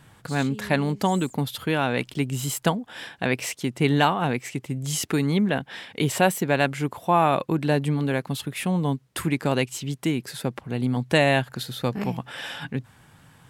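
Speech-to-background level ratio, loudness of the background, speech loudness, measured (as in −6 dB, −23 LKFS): 16.0 dB, −41.0 LKFS, −25.0 LKFS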